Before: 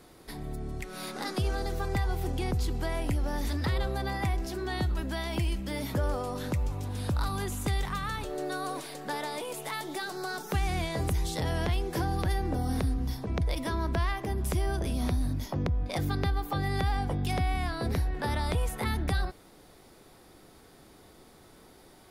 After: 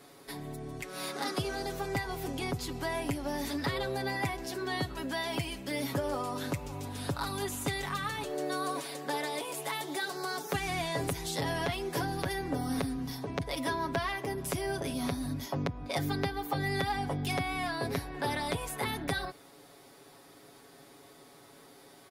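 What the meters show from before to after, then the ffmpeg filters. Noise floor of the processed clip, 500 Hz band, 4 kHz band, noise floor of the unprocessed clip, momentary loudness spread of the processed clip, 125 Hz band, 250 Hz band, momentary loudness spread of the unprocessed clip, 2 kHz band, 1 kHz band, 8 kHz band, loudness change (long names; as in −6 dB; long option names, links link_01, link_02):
−56 dBFS, +0.5 dB, +1.5 dB, −55 dBFS, 4 LU, −7.0 dB, −1.0 dB, 6 LU, +1.5 dB, 0.0 dB, +1.5 dB, −2.5 dB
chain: -af "highpass=frequency=240:poles=1,aecho=1:1:7.2:0.66"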